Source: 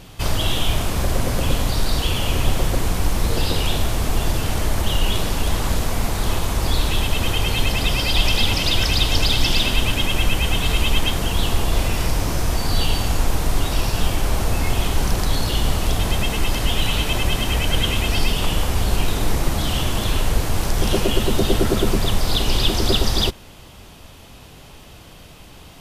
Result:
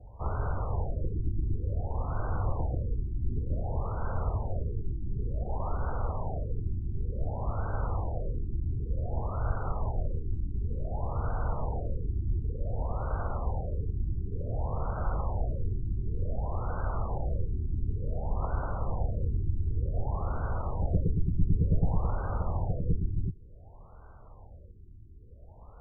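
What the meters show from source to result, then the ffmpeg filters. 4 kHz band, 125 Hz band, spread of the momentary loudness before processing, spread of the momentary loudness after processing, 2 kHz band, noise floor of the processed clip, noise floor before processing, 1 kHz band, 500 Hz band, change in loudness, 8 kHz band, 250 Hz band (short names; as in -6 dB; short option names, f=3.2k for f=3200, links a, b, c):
under -40 dB, -7.5 dB, 5 LU, 4 LU, -25.0 dB, -49 dBFS, -42 dBFS, -11.0 dB, -12.5 dB, -12.0 dB, under -40 dB, -13.5 dB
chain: -af "equalizer=f=125:t=o:w=1:g=10,equalizer=f=250:t=o:w=1:g=7,equalizer=f=500:t=o:w=1:g=-12,highpass=f=170:t=q:w=0.5412,highpass=f=170:t=q:w=1.307,lowpass=f=2.4k:t=q:w=0.5176,lowpass=f=2.4k:t=q:w=0.7071,lowpass=f=2.4k:t=q:w=1.932,afreqshift=-220,afftfilt=real='re*lt(b*sr/1024,380*pow(1600/380,0.5+0.5*sin(2*PI*0.55*pts/sr)))':imag='im*lt(b*sr/1024,380*pow(1600/380,0.5+0.5*sin(2*PI*0.55*pts/sr)))':win_size=1024:overlap=0.75,volume=-3.5dB"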